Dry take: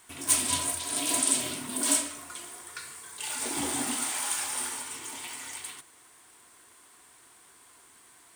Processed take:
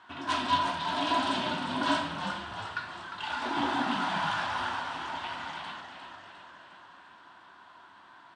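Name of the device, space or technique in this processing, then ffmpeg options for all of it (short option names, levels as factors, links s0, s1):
frequency-shifting delay pedal into a guitar cabinet: -filter_complex "[0:a]asplit=8[s0][s1][s2][s3][s4][s5][s6][s7];[s1]adelay=353,afreqshift=-89,volume=0.398[s8];[s2]adelay=706,afreqshift=-178,volume=0.234[s9];[s3]adelay=1059,afreqshift=-267,volume=0.138[s10];[s4]adelay=1412,afreqshift=-356,volume=0.0822[s11];[s5]adelay=1765,afreqshift=-445,volume=0.0484[s12];[s6]adelay=2118,afreqshift=-534,volume=0.0285[s13];[s7]adelay=2471,afreqshift=-623,volume=0.0168[s14];[s0][s8][s9][s10][s11][s12][s13][s14]amix=inputs=8:normalize=0,highpass=96,equalizer=f=120:t=q:w=4:g=-4,equalizer=f=450:t=q:w=4:g=-10,equalizer=f=680:t=q:w=4:g=3,equalizer=f=970:t=q:w=4:g=8,equalizer=f=1500:t=q:w=4:g=7,equalizer=f=2200:t=q:w=4:g=-8,lowpass=f=3700:w=0.5412,lowpass=f=3700:w=1.3066,volume=1.41"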